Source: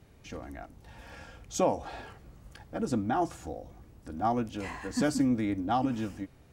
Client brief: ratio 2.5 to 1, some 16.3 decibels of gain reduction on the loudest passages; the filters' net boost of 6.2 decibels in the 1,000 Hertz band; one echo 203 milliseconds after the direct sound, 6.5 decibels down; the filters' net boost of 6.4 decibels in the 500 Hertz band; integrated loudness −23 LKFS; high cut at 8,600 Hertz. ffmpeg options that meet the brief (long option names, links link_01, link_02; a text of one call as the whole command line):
ffmpeg -i in.wav -af "lowpass=8600,equalizer=frequency=500:width_type=o:gain=6,equalizer=frequency=1000:width_type=o:gain=6,acompressor=threshold=-40dB:ratio=2.5,aecho=1:1:203:0.473,volume=16.5dB" out.wav